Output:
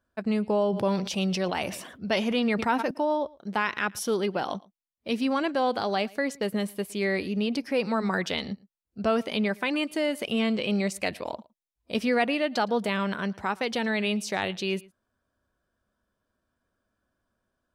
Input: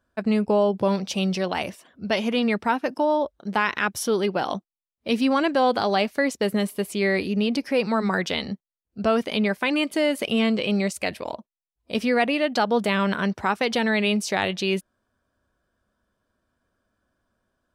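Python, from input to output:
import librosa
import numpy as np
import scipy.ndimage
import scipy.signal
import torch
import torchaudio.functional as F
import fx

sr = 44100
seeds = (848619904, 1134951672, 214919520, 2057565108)

y = fx.rider(x, sr, range_db=10, speed_s=2.0)
y = y + 10.0 ** (-24.0 / 20.0) * np.pad(y, (int(113 * sr / 1000.0), 0))[:len(y)]
y = fx.sustainer(y, sr, db_per_s=60.0, at=(0.63, 2.91))
y = y * librosa.db_to_amplitude(-5.0)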